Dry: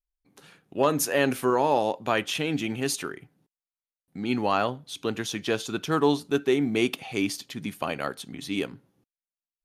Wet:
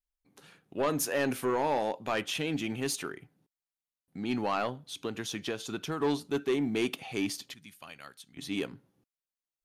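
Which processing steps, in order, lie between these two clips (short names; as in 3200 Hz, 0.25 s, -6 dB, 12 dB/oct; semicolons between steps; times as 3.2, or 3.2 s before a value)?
4.68–6 compressor 10:1, threshold -26 dBFS, peak gain reduction 8 dB; 7.54–8.37 passive tone stack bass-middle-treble 5-5-5; soft clip -18 dBFS, distortion -14 dB; gain -3.5 dB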